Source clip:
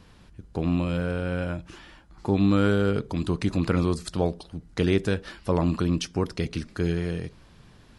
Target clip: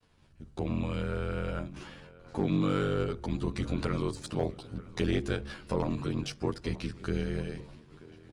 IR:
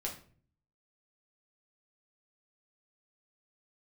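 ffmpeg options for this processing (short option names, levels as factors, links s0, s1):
-filter_complex "[0:a]aeval=exprs='if(lt(val(0),0),0.708*val(0),val(0))':c=same,agate=range=0.0224:threshold=0.00501:ratio=3:detection=peak,adynamicequalizer=threshold=0.0178:dfrequency=230:dqfactor=1.4:tfrequency=230:tqfactor=1.4:attack=5:release=100:ratio=0.375:range=2.5:mode=cutabove:tftype=bell,asplit=2[s0][s1];[s1]acompressor=threshold=0.0141:ratio=6,volume=1.06[s2];[s0][s2]amix=inputs=2:normalize=0,aeval=exprs='val(0)*sin(2*PI*24*n/s)':c=same,bandreject=f=72.75:t=h:w=4,bandreject=f=145.5:t=h:w=4,bandreject=f=218.25:t=h:w=4,bandreject=f=291:t=h:w=4,bandreject=f=363.75:t=h:w=4,asoftclip=type=hard:threshold=0.224,asplit=2[s3][s4];[s4]adelay=893,lowpass=f=4000:p=1,volume=0.106,asplit=2[s5][s6];[s6]adelay=893,lowpass=f=4000:p=1,volume=0.51,asplit=2[s7][s8];[s8]adelay=893,lowpass=f=4000:p=1,volume=0.51,asplit=2[s9][s10];[s10]adelay=893,lowpass=f=4000:p=1,volume=0.51[s11];[s3][s5][s7][s9][s11]amix=inputs=5:normalize=0,asetrate=42336,aresample=44100,asplit=2[s12][s13];[s13]adelay=11.1,afreqshift=0.52[s14];[s12][s14]amix=inputs=2:normalize=1"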